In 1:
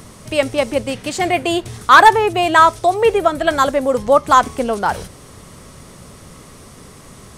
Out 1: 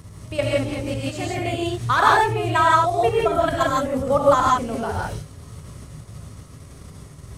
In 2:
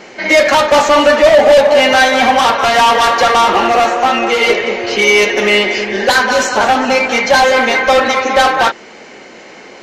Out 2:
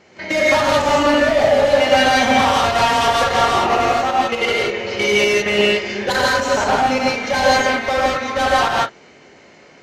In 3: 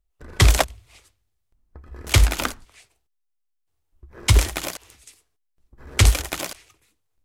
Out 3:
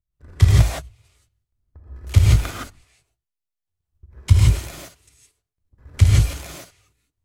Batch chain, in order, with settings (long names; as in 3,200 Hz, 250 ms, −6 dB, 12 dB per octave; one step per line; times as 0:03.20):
parametric band 88 Hz +15 dB 1.2 octaves
output level in coarse steps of 11 dB
reverb whose tail is shaped and stops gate 190 ms rising, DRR −4 dB
level −7.5 dB